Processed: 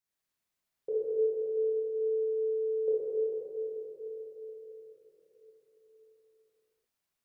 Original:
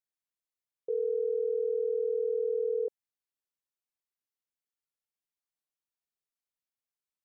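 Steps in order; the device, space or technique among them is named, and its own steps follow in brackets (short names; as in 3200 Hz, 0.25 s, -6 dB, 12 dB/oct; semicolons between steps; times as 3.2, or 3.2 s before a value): notch 480 Hz, Q 16; cathedral (reverb RT60 4.5 s, pre-delay 21 ms, DRR -8.5 dB); gain +1 dB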